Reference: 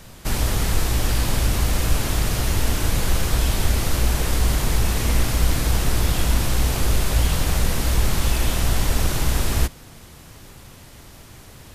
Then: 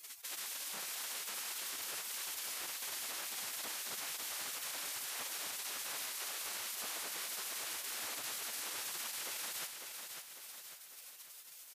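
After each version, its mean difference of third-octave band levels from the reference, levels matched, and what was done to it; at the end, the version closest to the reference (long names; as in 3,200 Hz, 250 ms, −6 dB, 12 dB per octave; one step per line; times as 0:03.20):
11.0 dB: gate on every frequency bin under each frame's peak −30 dB weak
downward compressor, threshold −42 dBFS, peak gain reduction 14.5 dB
brickwall limiter −39 dBFS, peak gain reduction 9.5 dB
repeating echo 550 ms, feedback 48%, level −6 dB
level +5.5 dB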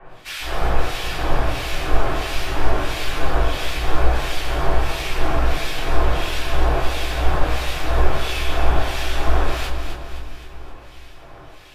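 7.0 dB: three-way crossover with the lows and the highs turned down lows −15 dB, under 400 Hz, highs −17 dB, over 3,900 Hz
two-band tremolo in antiphase 1.5 Hz, depth 100%, crossover 1,800 Hz
echo with a time of its own for lows and highs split 350 Hz, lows 420 ms, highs 260 ms, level −8 dB
rectangular room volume 160 cubic metres, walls furnished, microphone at 3.5 metres
level +1.5 dB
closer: second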